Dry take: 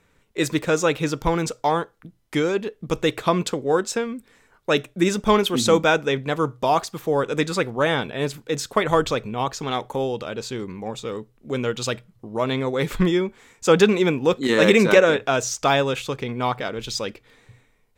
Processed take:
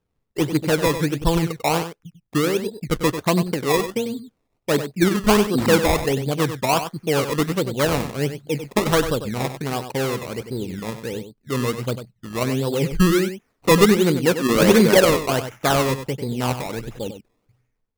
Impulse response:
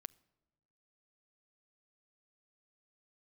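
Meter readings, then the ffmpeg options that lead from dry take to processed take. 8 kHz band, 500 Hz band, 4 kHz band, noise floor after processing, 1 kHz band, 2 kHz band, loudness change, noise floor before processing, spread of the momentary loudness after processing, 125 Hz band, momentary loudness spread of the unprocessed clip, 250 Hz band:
+2.5 dB, 0.0 dB, +1.0 dB, −73 dBFS, −0.5 dB, −0.5 dB, +1.5 dB, −62 dBFS, 14 LU, +4.5 dB, 13 LU, +3.0 dB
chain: -filter_complex "[0:a]afwtdn=0.0447,lowshelf=frequency=310:gain=8,acrusher=samples=20:mix=1:aa=0.000001:lfo=1:lforange=20:lforate=1.4,asplit=2[link_01][link_02];[link_02]aecho=0:1:96:0.316[link_03];[link_01][link_03]amix=inputs=2:normalize=0,volume=-2dB"

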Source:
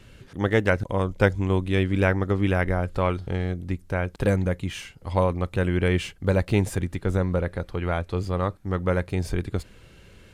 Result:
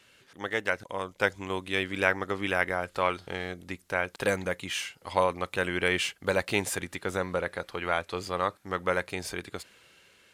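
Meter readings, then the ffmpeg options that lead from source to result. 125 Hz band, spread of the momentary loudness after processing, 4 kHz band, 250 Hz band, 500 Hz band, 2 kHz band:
−16.5 dB, 9 LU, +3.5 dB, −10.0 dB, −4.5 dB, +1.5 dB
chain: -af "highpass=frequency=1200:poles=1,dynaudnorm=framelen=360:gausssize=7:maxgain=7dB,volume=-2dB"

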